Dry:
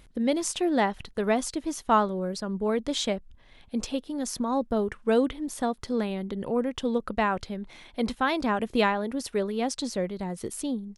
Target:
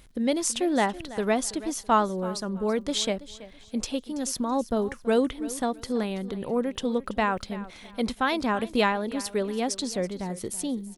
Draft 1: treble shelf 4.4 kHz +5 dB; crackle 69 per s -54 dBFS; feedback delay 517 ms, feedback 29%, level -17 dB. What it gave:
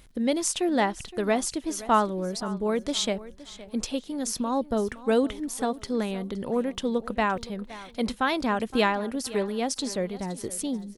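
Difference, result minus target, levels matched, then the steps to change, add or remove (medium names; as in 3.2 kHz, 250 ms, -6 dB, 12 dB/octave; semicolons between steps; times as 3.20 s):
echo 188 ms late
change: feedback delay 329 ms, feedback 29%, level -17 dB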